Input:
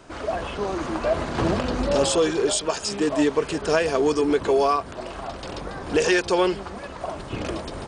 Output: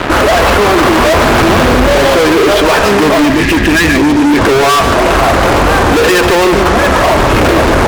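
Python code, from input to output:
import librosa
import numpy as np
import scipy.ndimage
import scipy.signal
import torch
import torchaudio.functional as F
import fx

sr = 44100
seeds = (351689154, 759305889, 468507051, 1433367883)

p1 = fx.ladder_lowpass(x, sr, hz=2500.0, resonance_pct=25)
p2 = fx.peak_eq(p1, sr, hz=170.0, db=-5.5, octaves=0.67)
p3 = fx.rider(p2, sr, range_db=4, speed_s=0.5)
p4 = p2 + (p3 * 10.0 ** (0.0 / 20.0))
p5 = fx.spec_box(p4, sr, start_s=3.25, length_s=1.13, low_hz=370.0, high_hz=1600.0, gain_db=-20)
p6 = fx.fuzz(p5, sr, gain_db=38.0, gate_db=-46.0)
p7 = p6 + fx.echo_single(p6, sr, ms=145, db=-9.0, dry=0)
p8 = fx.env_flatten(p7, sr, amount_pct=50)
y = p8 * 10.0 ** (5.0 / 20.0)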